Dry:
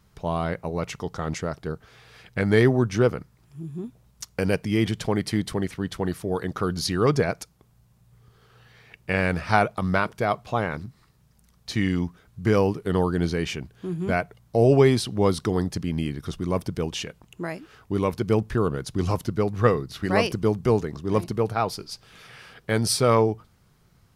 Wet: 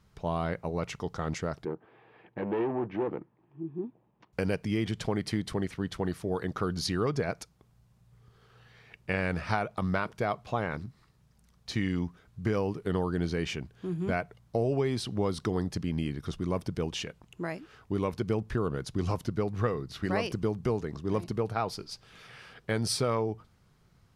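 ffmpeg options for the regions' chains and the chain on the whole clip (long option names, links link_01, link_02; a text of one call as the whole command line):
ffmpeg -i in.wav -filter_complex "[0:a]asettb=1/sr,asplit=3[link_01][link_02][link_03];[link_01]atrim=end=1.654[link_04];[link_02]atrim=start=1.65:end=4.33,asetpts=PTS-STARTPTS,afade=type=in:duration=0.004:curve=qsin,afade=type=out:start_time=2.676:duration=0.004:curve=qsin,volume=24.5dB,asoftclip=hard,volume=-24.5dB,highpass=200,equalizer=frequency=330:width_type=q:width=4:gain=10,equalizer=frequency=870:width_type=q:width=4:gain=5,equalizer=frequency=1400:width_type=q:width=4:gain=-9,equalizer=frequency=2100:width_type=q:width=4:gain=-6,lowpass=frequency=2300:width=0.5412,lowpass=frequency=2300:width=1.3066[link_05];[link_03]atrim=start=4.326[link_06];[link_04][link_05]acrossfade=duration=0.004:curve1=hsin:curve2=qsin[link_07];[link_07][link_06]acrossfade=duration=0.004:curve1=qsin:curve2=hsin,highshelf=frequency=11000:gain=-11,acompressor=threshold=-21dB:ratio=6,volume=-3.5dB" out.wav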